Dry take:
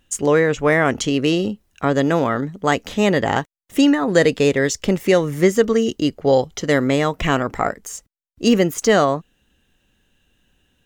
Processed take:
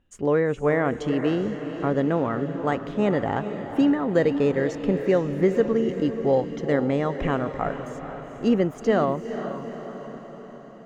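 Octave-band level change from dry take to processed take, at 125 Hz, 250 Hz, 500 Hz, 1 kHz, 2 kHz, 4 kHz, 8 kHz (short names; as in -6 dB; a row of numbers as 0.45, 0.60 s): -4.5 dB, -4.5 dB, -5.0 dB, -6.5 dB, -10.0 dB, -15.0 dB, under -20 dB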